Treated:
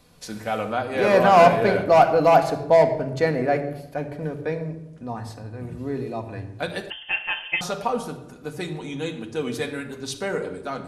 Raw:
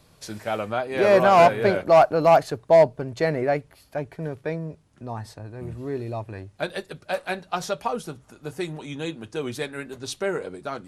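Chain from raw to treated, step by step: reverb RT60 0.95 s, pre-delay 4 ms, DRR 4.5 dB; 6.9–7.61 inverted band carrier 3300 Hz

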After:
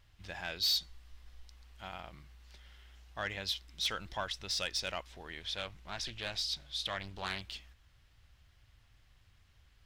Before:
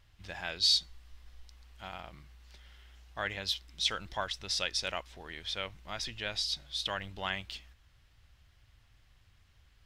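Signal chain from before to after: soft clip -24 dBFS, distortion -14 dB; 5.4–7.41 Doppler distortion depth 0.5 ms; gain -1 dB

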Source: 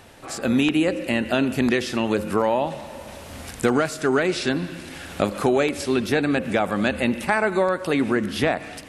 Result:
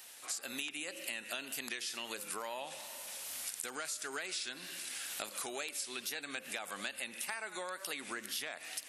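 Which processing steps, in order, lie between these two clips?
wow and flutter 70 cents; differentiator; compressor, threshold -41 dBFS, peak gain reduction 11 dB; gain +4 dB

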